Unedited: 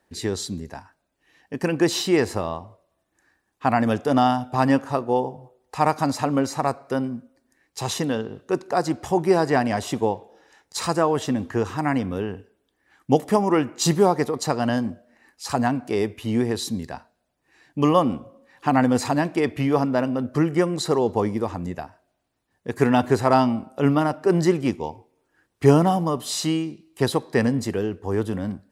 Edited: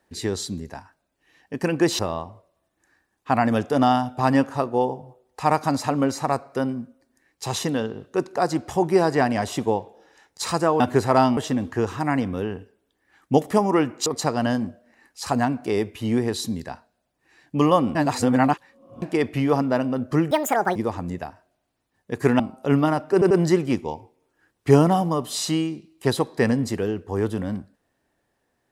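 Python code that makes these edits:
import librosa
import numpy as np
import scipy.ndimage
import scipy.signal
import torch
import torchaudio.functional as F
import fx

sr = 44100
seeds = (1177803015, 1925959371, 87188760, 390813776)

y = fx.edit(x, sr, fx.cut(start_s=1.99, length_s=0.35),
    fx.cut(start_s=13.84, length_s=0.45),
    fx.reverse_span(start_s=18.18, length_s=1.07),
    fx.speed_span(start_s=20.54, length_s=0.78, speed=1.75),
    fx.move(start_s=22.96, length_s=0.57, to_s=11.15),
    fx.stutter(start_s=24.26, slice_s=0.09, count=3), tone=tone)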